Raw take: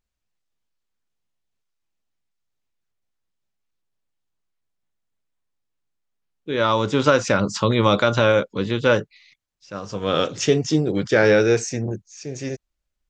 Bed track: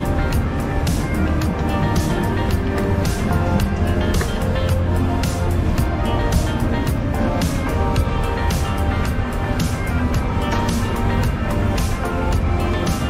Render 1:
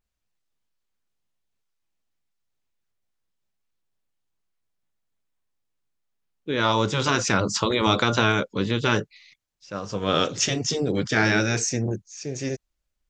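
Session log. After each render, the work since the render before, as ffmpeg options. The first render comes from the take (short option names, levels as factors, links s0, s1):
-af "afftfilt=real='re*lt(hypot(re,im),0.708)':imag='im*lt(hypot(re,im),0.708)':win_size=1024:overlap=0.75,adynamicequalizer=threshold=0.0112:dfrequency=6200:dqfactor=1.1:tfrequency=6200:tqfactor=1.1:attack=5:release=100:ratio=0.375:range=2:mode=boostabove:tftype=bell"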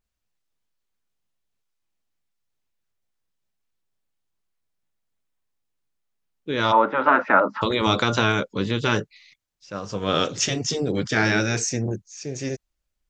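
-filter_complex "[0:a]asplit=3[s0][s1][s2];[s0]afade=t=out:st=6.71:d=0.02[s3];[s1]highpass=f=240:w=0.5412,highpass=f=240:w=1.3066,equalizer=f=260:t=q:w=4:g=4,equalizer=f=400:t=q:w=4:g=-5,equalizer=f=610:t=q:w=4:g=10,equalizer=f=880:t=q:w=4:g=9,equalizer=f=1300:t=q:w=4:g=9,equalizer=f=1800:t=q:w=4:g=5,lowpass=f=2100:w=0.5412,lowpass=f=2100:w=1.3066,afade=t=in:st=6.71:d=0.02,afade=t=out:st=7.61:d=0.02[s4];[s2]afade=t=in:st=7.61:d=0.02[s5];[s3][s4][s5]amix=inputs=3:normalize=0"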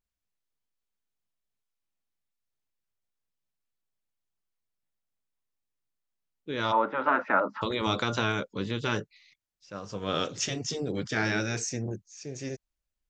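-af "volume=0.422"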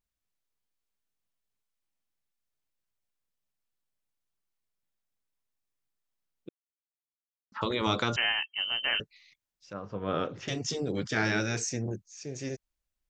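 -filter_complex "[0:a]asettb=1/sr,asplit=3[s0][s1][s2];[s0]atrim=end=8.164[s3];[s1]atrim=start=8.16:end=9,asetpts=PTS-STARTPTS,afade=t=in:d=0.004:c=qsin,afade=t=out:st=0.836:d=0.004:c=qsin,lowpass=f=2700:t=q:w=0.5098,lowpass=f=2700:t=q:w=0.6013,lowpass=f=2700:t=q:w=0.9,lowpass=f=2700:t=q:w=2.563,afreqshift=-3200[s4];[s2]atrim=start=8.996[s5];[s3][s4]acrossfade=d=0.004:c1=hsin:c2=qsin[s6];[s6][s5]acrossfade=d=0.004:c1=qsin:c2=hsin,asettb=1/sr,asplit=3[s7][s8][s9];[s7]atrim=end=9.734[s10];[s8]atrim=start=9.73:end=10.48,asetpts=PTS-STARTPTS,afade=t=in:d=0.004:c=qsin,afade=t=out:st=0.746:d=0.004:c=qsin,lowpass=1800[s11];[s9]atrim=start=10.476[s12];[s10][s11]acrossfade=d=0.004:c1=hsin:c2=qsin[s13];[s13][s12]acrossfade=d=0.004:c1=qsin:c2=hsin,asplit=3[s14][s15][s16];[s14]atrim=end=6.49,asetpts=PTS-STARTPTS,afade=t=out:st=6.486:d=0.004:c=hsin[s17];[s15]atrim=start=6.49:end=7.52,asetpts=PTS-STARTPTS,volume=0[s18];[s16]atrim=start=7.52,asetpts=PTS-STARTPTS,afade=t=in:d=0.004:c=hsin[s19];[s17][s18][s19]concat=n=3:v=0:a=1"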